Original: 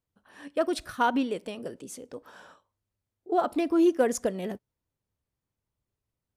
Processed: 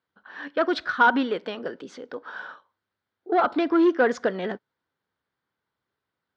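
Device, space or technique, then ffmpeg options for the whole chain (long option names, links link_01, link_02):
overdrive pedal into a guitar cabinet: -filter_complex "[0:a]asplit=2[link_01][link_02];[link_02]highpass=frequency=720:poles=1,volume=14dB,asoftclip=type=tanh:threshold=-12.5dB[link_03];[link_01][link_03]amix=inputs=2:normalize=0,lowpass=frequency=4600:poles=1,volume=-6dB,highpass=100,equalizer=frequency=110:width_type=q:width=4:gain=-5,equalizer=frequency=610:width_type=q:width=4:gain=-4,equalizer=frequency=1500:width_type=q:width=4:gain=7,equalizer=frequency=2600:width_type=q:width=4:gain=-7,lowpass=frequency=4300:width=0.5412,lowpass=frequency=4300:width=1.3066,volume=2dB"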